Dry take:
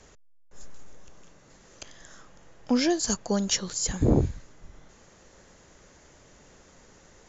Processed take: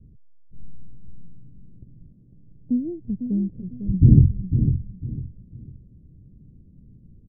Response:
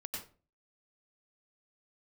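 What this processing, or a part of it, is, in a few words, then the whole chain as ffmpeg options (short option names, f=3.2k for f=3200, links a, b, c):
the neighbour's flat through the wall: -filter_complex "[0:a]lowpass=f=240:w=0.5412,lowpass=f=240:w=1.3066,equalizer=f=120:t=o:w=0.93:g=7,asettb=1/sr,asplit=3[a][b][c];[a]atrim=end=2.124[d];[b]atrim=start=2.12:end=3.73,asetpts=PTS-STARTPTS,afade=t=in:d=0.004:c=qsin,afade=t=out:st=1.606:d=0.004:c=qsin,lowshelf=f=200:g=-8[e];[c]atrim=start=3.726[f];[d][e]acrossfade=d=0.004:c1=hsin:c2=qsin[g];[g][f]acrossfade=d=0.004:c1=qsin:c2=hsin,asplit=2[h][i];[i]adelay=501,lowpass=f=2k:p=1,volume=-8dB,asplit=2[j][k];[k]adelay=501,lowpass=f=2k:p=1,volume=0.29,asplit=2[l][m];[m]adelay=501,lowpass=f=2k:p=1,volume=0.29[n];[h][j][l][n]amix=inputs=4:normalize=0,volume=7.5dB"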